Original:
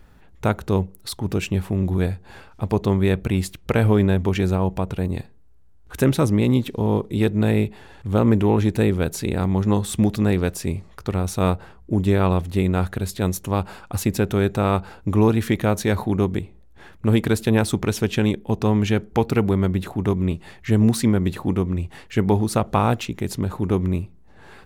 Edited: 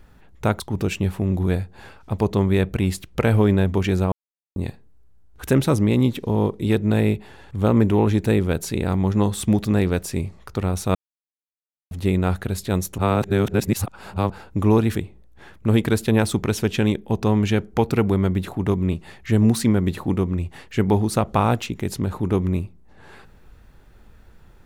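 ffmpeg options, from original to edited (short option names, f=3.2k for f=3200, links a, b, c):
-filter_complex "[0:a]asplit=9[a][b][c][d][e][f][g][h][i];[a]atrim=end=0.602[j];[b]atrim=start=1.108:end=4.63,asetpts=PTS-STARTPTS,afade=t=out:st=3.518:d=0.004:c=hsin[k];[c]atrim=start=4.63:end=5.07,asetpts=PTS-STARTPTS,volume=0[l];[d]atrim=start=5.07:end=11.46,asetpts=PTS-STARTPTS,afade=t=in:d=0.004:c=hsin,afade=t=out:st=6.386:d=0.004:c=hsin[m];[e]atrim=start=11.46:end=12.42,asetpts=PTS-STARTPTS,volume=0[n];[f]atrim=start=12.42:end=13.492,asetpts=PTS-STARTPTS,afade=t=in:d=0.004:c=hsin[o];[g]atrim=start=13.488:end=14.812,asetpts=PTS-STARTPTS,areverse[p];[h]atrim=start=14.808:end=15.462[q];[i]atrim=start=16.338[r];[k][l][m][n][o]concat=n=5:v=0:a=1[s];[j][s]acrossfade=d=0.004:c1=hsin:c2=hsin[t];[t][p]acrossfade=d=0.004:c1=hsin:c2=hsin[u];[u][q]acrossfade=d=0.004:c1=hsin:c2=hsin[v];[v][r]acrossfade=d=0.004:c1=hsin:c2=hsin"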